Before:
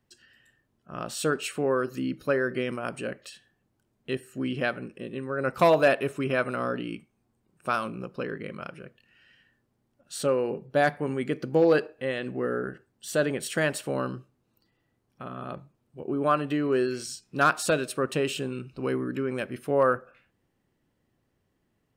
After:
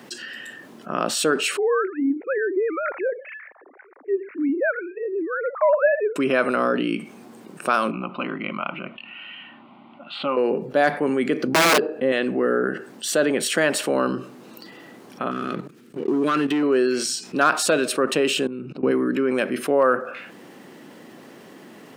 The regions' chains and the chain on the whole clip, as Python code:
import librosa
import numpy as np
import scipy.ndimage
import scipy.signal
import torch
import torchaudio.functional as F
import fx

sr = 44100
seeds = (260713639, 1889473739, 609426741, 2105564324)

y = fx.chain(x, sr, fx.sine_speech(),
    fx.steep_lowpass(hz=2300.0, slope=72),
    fx.stagger_phaser(hz=1.0), at=(1.57, 6.16))
y = fx.chain(y, sr, fx.lowpass(hz=3000.0, slope=24),
    fx.peak_eq(hz=93.0, db=-9.0, octaves=2.1),
    fx.fixed_phaser(hz=1700.0, stages=6), at=(7.91, 10.37))
y = fx.chain(y, sr, fx.tilt_shelf(db=7.0, hz=720.0),
    fx.overflow_wrap(gain_db=14.5), at=(11.47, 12.12))
y = fx.chain(y, sr, fx.band_shelf(hz=760.0, db=-13.5, octaves=1.2),
    fx.leveller(passes=2),
    fx.level_steps(step_db=14), at=(15.31, 16.63))
y = fx.chain(y, sr, fx.tilt_eq(slope=-3.5),
    fx.level_steps(step_db=24), at=(18.47, 18.91))
y = scipy.signal.sosfilt(scipy.signal.butter(4, 200.0, 'highpass', fs=sr, output='sos'), y)
y = fx.high_shelf(y, sr, hz=7800.0, db=-6.0)
y = fx.env_flatten(y, sr, amount_pct=50)
y = y * 10.0 ** (2.0 / 20.0)